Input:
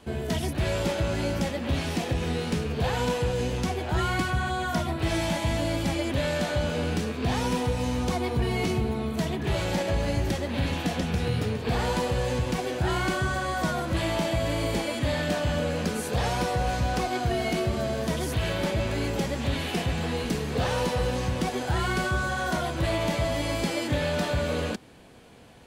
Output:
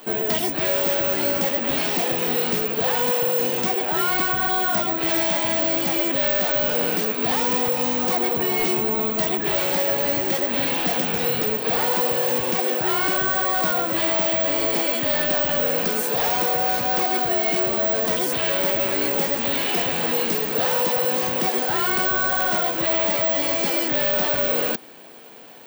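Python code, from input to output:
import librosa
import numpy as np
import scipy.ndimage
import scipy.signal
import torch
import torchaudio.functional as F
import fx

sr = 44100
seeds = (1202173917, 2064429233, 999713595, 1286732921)

p1 = scipy.signal.sosfilt(scipy.signal.butter(2, 310.0, 'highpass', fs=sr, output='sos'), x)
p2 = fx.rider(p1, sr, range_db=10, speed_s=0.5)
p3 = p1 + (p2 * librosa.db_to_amplitude(2.0))
p4 = np.clip(p3, -10.0 ** (-20.5 / 20.0), 10.0 ** (-20.5 / 20.0))
y = (np.kron(scipy.signal.resample_poly(p4, 1, 2), np.eye(2)[0]) * 2)[:len(p4)]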